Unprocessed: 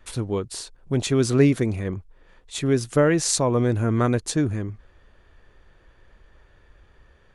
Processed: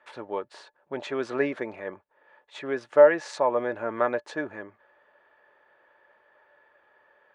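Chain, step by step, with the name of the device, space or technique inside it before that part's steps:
tin-can telephone (band-pass filter 580–2,000 Hz; hollow resonant body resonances 590/880/1,700 Hz, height 11 dB, ringing for 80 ms)

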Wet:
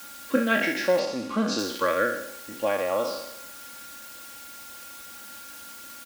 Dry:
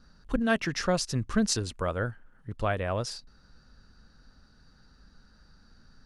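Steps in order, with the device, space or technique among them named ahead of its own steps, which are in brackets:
peak hold with a decay on every bin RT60 0.80 s
shortwave radio (band-pass filter 350–2,900 Hz; amplitude tremolo 0.54 Hz, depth 34%; auto-filter notch saw up 0.57 Hz 680–2,300 Hz; steady tone 1,400 Hz −58 dBFS; white noise bed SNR 15 dB)
0:00.99–0:01.59: high-frequency loss of the air 54 metres
high-pass filter 50 Hz
comb filter 3.6 ms, depth 66%
level +7 dB

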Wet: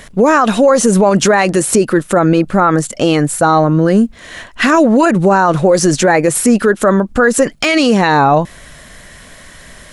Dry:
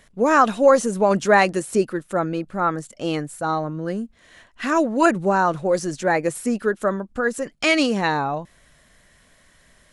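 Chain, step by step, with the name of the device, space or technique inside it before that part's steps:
loud club master (downward compressor 2.5 to 1, threshold −21 dBFS, peak gain reduction 8 dB; hard clipping −10.5 dBFS, distortion −47 dB; boost into a limiter +19.5 dB)
level −1 dB

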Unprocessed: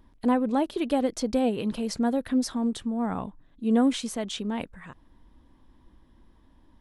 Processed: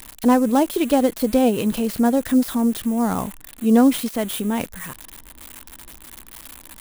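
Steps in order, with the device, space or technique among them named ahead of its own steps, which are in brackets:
budget class-D amplifier (gap after every zero crossing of 0.089 ms; spike at every zero crossing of −27 dBFS)
level +7.5 dB

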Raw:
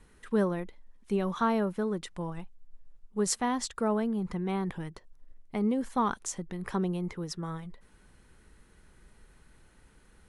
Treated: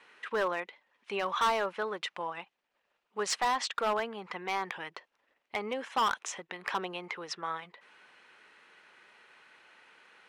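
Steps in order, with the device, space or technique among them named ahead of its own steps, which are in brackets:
0:05.81–0:06.51: notch filter 4,500 Hz, Q 8.3
dynamic equaliser 250 Hz, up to −4 dB, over −39 dBFS, Q 0.74
megaphone (band-pass filter 700–3,800 Hz; parametric band 2,600 Hz +6 dB 0.59 octaves; hard clipping −31.5 dBFS, distortion −8 dB)
level +8 dB

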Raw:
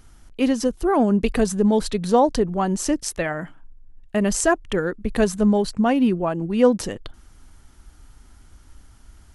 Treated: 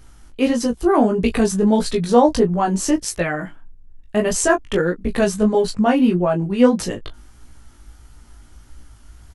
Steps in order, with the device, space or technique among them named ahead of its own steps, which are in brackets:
double-tracked vocal (double-tracking delay 17 ms −8 dB; chorus effect 1.6 Hz, delay 16.5 ms, depth 4 ms)
level +5.5 dB

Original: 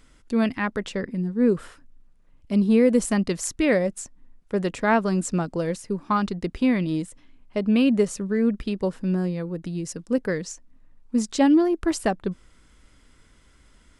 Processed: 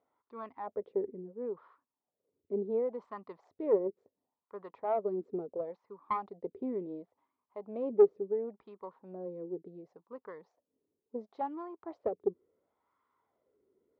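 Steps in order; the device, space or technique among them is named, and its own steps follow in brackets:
wah-wah guitar rig (LFO wah 0.71 Hz 390–1,100 Hz, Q 4.9; tube saturation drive 18 dB, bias 0.45; loudspeaker in its box 85–4,000 Hz, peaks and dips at 94 Hz +8 dB, 410 Hz +7 dB, 1,600 Hz −8 dB, 2,800 Hz −10 dB)
level −2 dB

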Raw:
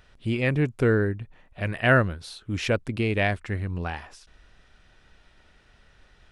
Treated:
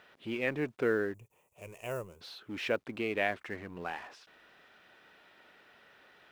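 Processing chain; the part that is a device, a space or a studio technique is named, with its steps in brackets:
phone line with mismatched companding (band-pass filter 310–3,500 Hz; mu-law and A-law mismatch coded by mu)
0:01.14–0:02.21: drawn EQ curve 120 Hz 0 dB, 270 Hz −17 dB, 420 Hz −4 dB, 730 Hz −13 dB, 1,000 Hz −7 dB, 1,700 Hz −26 dB, 2,500 Hz −7 dB, 4,000 Hz −18 dB, 7,000 Hz +7 dB
level −6 dB

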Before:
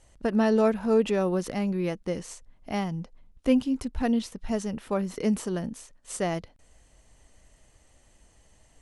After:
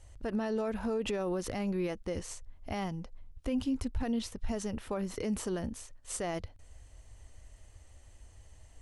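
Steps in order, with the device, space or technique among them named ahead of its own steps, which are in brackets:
car stereo with a boomy subwoofer (low shelf with overshoot 120 Hz +6.5 dB, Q 3; brickwall limiter −23.5 dBFS, peak gain reduction 11.5 dB)
level −1.5 dB

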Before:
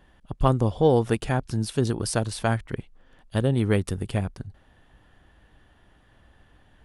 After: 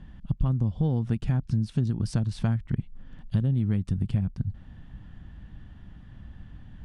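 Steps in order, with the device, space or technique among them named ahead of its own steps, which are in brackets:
jukebox (low-pass filter 6,200 Hz 12 dB per octave; low shelf with overshoot 290 Hz +13 dB, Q 1.5; downward compressor 6 to 1, threshold −23 dBFS, peak gain reduction 17.5 dB)

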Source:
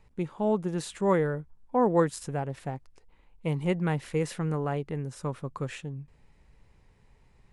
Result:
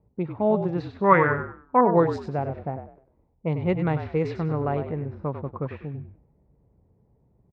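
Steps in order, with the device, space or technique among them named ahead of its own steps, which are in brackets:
low-pass that shuts in the quiet parts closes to 450 Hz, open at −22 dBFS
0:01.04–0:01.81: flat-topped bell 1,700 Hz +13 dB
frequency-shifting delay pedal into a guitar cabinet (echo with shifted repeats 97 ms, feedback 32%, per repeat −43 Hz, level −8.5 dB; loudspeaker in its box 78–4,300 Hz, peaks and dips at 650 Hz +4 dB, 1,700 Hz −4 dB, 3,100 Hz −8 dB)
level +3 dB

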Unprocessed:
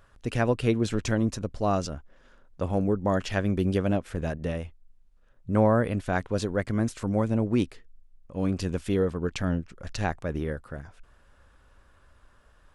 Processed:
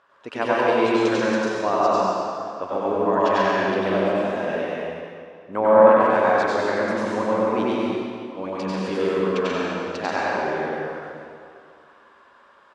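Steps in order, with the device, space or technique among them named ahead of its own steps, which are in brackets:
station announcement (band-pass filter 370–4,300 Hz; parametric band 1,000 Hz +7 dB 0.48 octaves; loudspeakers that aren't time-aligned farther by 33 metres −1 dB, 47 metres −3 dB, 60 metres −9 dB; convolution reverb RT60 2.2 s, pre-delay 83 ms, DRR −3.5 dB)

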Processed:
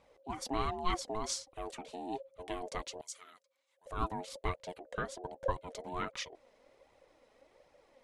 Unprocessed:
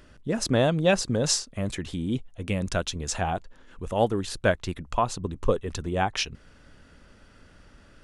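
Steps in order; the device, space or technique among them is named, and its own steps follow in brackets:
alien voice (ring modulation 540 Hz; flanger 1.3 Hz, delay 0.8 ms, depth 4.1 ms, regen +37%)
0:03.01–0:03.86: first difference
level −6 dB

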